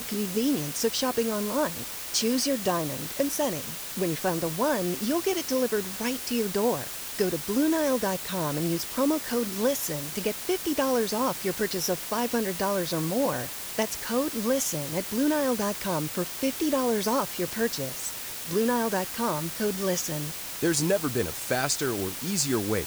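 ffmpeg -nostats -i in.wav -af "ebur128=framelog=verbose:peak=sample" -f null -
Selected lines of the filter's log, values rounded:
Integrated loudness:
  I:         -27.2 LUFS
  Threshold: -37.2 LUFS
Loudness range:
  LRA:         0.8 LU
  Threshold: -47.3 LUFS
  LRA low:   -27.7 LUFS
  LRA high:  -26.8 LUFS
Sample peak:
  Peak:      -11.4 dBFS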